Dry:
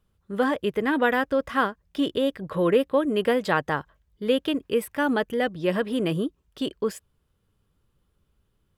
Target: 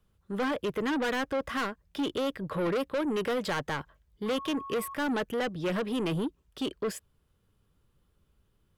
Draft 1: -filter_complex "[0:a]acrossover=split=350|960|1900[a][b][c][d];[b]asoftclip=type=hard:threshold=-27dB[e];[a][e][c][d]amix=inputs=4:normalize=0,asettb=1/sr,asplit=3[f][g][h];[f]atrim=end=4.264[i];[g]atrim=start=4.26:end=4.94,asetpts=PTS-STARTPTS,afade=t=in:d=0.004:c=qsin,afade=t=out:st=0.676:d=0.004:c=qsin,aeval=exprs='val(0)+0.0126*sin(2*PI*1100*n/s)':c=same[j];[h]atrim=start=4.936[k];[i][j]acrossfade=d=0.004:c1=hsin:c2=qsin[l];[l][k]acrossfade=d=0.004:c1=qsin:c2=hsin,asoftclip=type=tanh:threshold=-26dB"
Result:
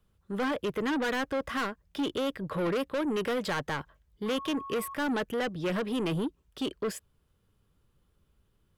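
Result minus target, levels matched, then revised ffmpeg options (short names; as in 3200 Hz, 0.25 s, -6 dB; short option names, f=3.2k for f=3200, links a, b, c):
hard clip: distortion +10 dB
-filter_complex "[0:a]acrossover=split=350|960|1900[a][b][c][d];[b]asoftclip=type=hard:threshold=-20dB[e];[a][e][c][d]amix=inputs=4:normalize=0,asettb=1/sr,asplit=3[f][g][h];[f]atrim=end=4.264[i];[g]atrim=start=4.26:end=4.94,asetpts=PTS-STARTPTS,afade=t=in:d=0.004:c=qsin,afade=t=out:st=0.676:d=0.004:c=qsin,aeval=exprs='val(0)+0.0126*sin(2*PI*1100*n/s)':c=same[j];[h]atrim=start=4.936[k];[i][j]acrossfade=d=0.004:c1=hsin:c2=qsin[l];[l][k]acrossfade=d=0.004:c1=qsin:c2=hsin,asoftclip=type=tanh:threshold=-26dB"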